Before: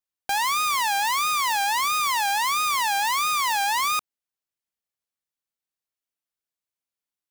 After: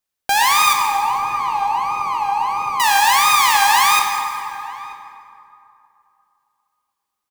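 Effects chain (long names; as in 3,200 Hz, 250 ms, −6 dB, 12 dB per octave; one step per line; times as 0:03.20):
0:00.73–0:02.80: moving average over 25 samples
slap from a distant wall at 160 metres, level −17 dB
convolution reverb RT60 2.8 s, pre-delay 8 ms, DRR 1.5 dB
level +7.5 dB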